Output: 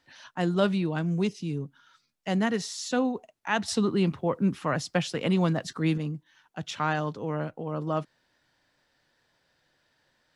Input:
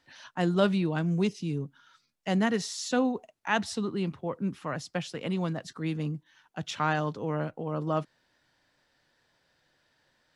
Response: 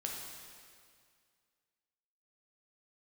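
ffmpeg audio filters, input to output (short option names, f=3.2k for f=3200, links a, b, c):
-filter_complex "[0:a]asettb=1/sr,asplit=3[a][b][c];[a]atrim=end=3.684[d];[b]atrim=start=3.68:end=5.98,asetpts=PTS-STARTPTS,afade=t=in:d=0.004:c=qsin,afade=t=out:st=2.296:d=0.004:c=qsin,acontrast=55[e];[c]atrim=start=5.976[f];[d][e]acrossfade=d=0.004:c1=hsin:c2=qsin[g];[g][f]acrossfade=d=0.004:c1=qsin:c2=hsin"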